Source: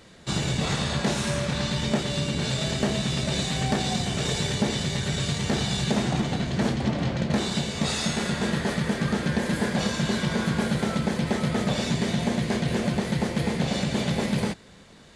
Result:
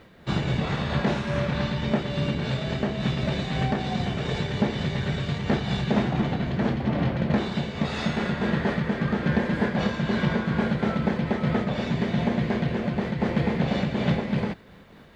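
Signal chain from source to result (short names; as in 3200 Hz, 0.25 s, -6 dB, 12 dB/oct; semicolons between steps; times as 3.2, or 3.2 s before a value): LPF 2600 Hz 12 dB/oct; bit-crush 12-bit; noise-modulated level, depth 60%; gain +4 dB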